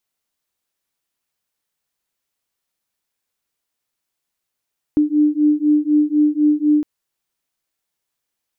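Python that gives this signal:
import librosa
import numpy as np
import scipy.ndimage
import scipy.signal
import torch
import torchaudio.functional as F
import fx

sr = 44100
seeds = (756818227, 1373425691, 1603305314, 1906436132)

y = fx.two_tone_beats(sr, length_s=1.86, hz=297.0, beat_hz=4.0, level_db=-15.5)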